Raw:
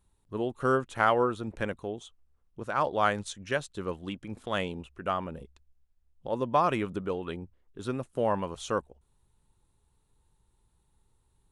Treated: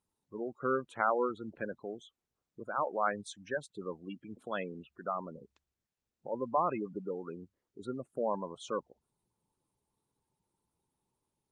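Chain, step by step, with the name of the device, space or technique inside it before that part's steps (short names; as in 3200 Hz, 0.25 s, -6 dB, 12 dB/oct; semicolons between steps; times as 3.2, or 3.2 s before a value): noise-suppressed video call (HPF 160 Hz 12 dB/oct; spectral gate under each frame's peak -15 dB strong; AGC gain up to 3 dB; gain -8 dB; Opus 32 kbps 48000 Hz)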